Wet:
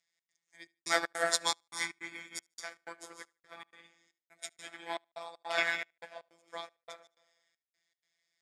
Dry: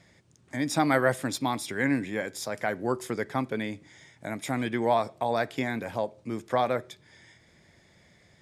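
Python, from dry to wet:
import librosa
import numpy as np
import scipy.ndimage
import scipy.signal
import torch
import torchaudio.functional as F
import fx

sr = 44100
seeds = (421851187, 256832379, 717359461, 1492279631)

y = fx.comb(x, sr, ms=0.9, depth=0.84, at=(1.41, 2.58))
y = fx.rev_freeverb(y, sr, rt60_s=1.1, hf_ratio=0.55, predelay_ms=105, drr_db=-0.5)
y = fx.robotise(y, sr, hz=168.0)
y = fx.weighting(y, sr, curve='ITU-R 468')
y = fx.step_gate(y, sr, bpm=157, pattern='xx.xxxx..', floor_db=-60.0, edge_ms=4.5)
y = fx.peak_eq(y, sr, hz=1600.0, db=7.5, octaves=1.6, at=(5.35, 6.28))
y = fx.echo_feedback(y, sr, ms=74, feedback_pct=29, wet_db=-18.5)
y = fx.upward_expand(y, sr, threshold_db=-37.0, expansion=2.5)
y = y * 10.0 ** (-3.0 / 20.0)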